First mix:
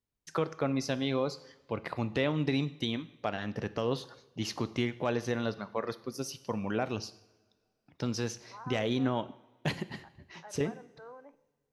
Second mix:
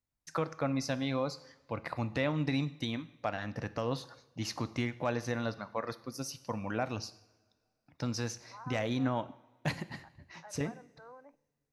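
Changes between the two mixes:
second voice: send -8.0 dB; master: add graphic EQ with 31 bands 200 Hz -5 dB, 400 Hz -11 dB, 3.15 kHz -8 dB

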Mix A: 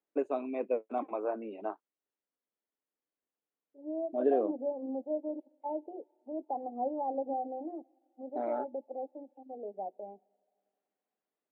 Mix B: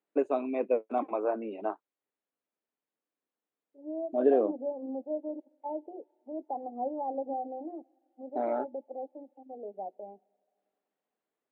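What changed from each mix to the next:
first voice +4.0 dB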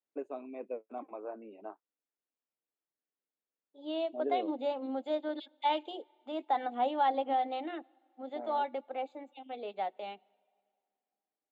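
first voice -12.0 dB; second voice: remove inverse Chebyshev low-pass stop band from 1.4 kHz, stop band 40 dB

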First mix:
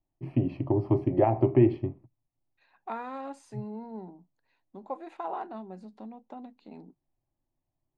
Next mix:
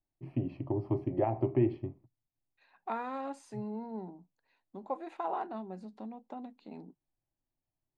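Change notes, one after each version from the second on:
first voice -7.0 dB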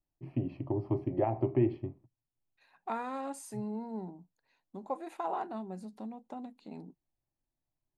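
second voice: remove band-pass 180–4400 Hz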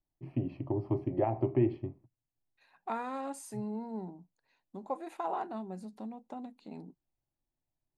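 no change

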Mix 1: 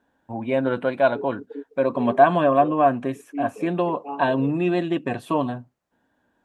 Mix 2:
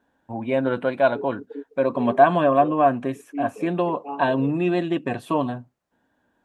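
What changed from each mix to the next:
no change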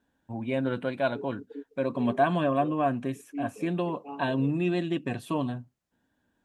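master: add peaking EQ 790 Hz -9.5 dB 2.9 oct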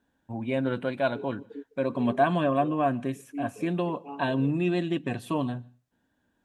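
first voice: send on

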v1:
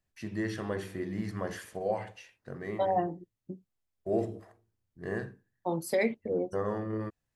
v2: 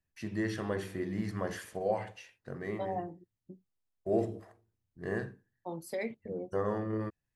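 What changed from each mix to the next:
second voice -8.5 dB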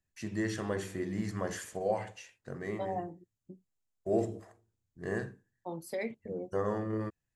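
first voice: add peaking EQ 7.2 kHz +10.5 dB 0.53 oct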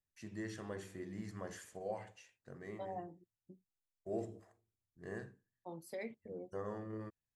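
first voice -10.5 dB; second voice -8.0 dB

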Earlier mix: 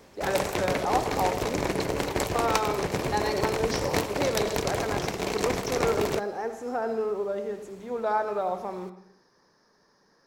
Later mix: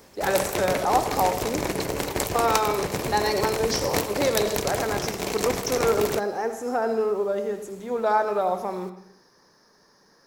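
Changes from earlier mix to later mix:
speech +4.5 dB; master: add treble shelf 7.8 kHz +11 dB

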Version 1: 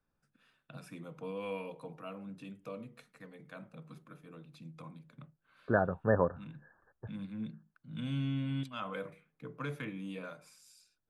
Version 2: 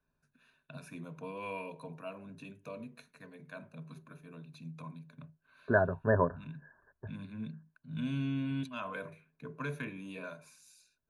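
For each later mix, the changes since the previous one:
master: add rippled EQ curve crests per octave 1.5, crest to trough 10 dB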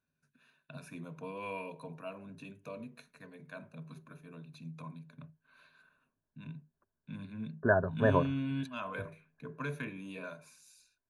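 second voice: entry +1.95 s

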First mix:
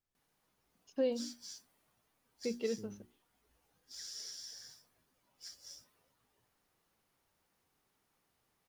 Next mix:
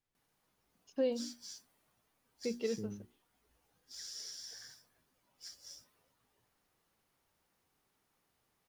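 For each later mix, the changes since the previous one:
second voice +7.0 dB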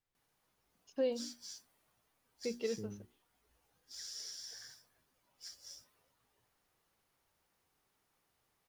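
master: add peaking EQ 220 Hz -3.5 dB 1.3 oct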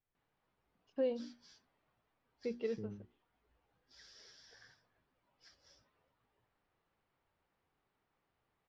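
master: add distance through air 300 m

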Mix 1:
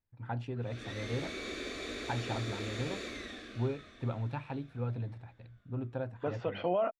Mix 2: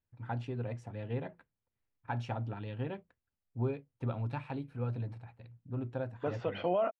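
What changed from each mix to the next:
background: muted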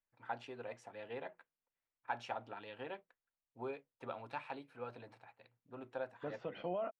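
first voice: add high-pass 570 Hz 12 dB/octave; second voice -9.0 dB; master: add bass shelf 120 Hz +6 dB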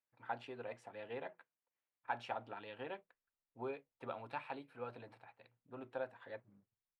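second voice: entry +2.05 s; master: add peaking EQ 6.2 kHz -7 dB 0.56 oct

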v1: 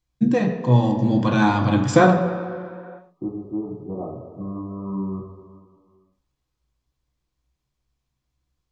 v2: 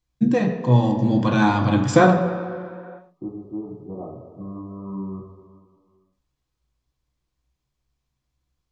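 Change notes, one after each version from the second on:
second voice -3.5 dB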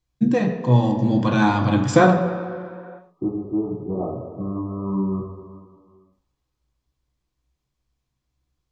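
second voice: send +8.5 dB

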